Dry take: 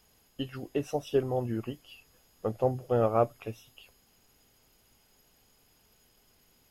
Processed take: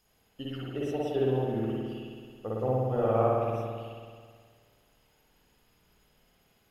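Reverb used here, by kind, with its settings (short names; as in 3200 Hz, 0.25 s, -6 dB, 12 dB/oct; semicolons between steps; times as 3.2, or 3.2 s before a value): spring tank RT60 1.9 s, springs 54 ms, chirp 20 ms, DRR -6.5 dB; gain -6.5 dB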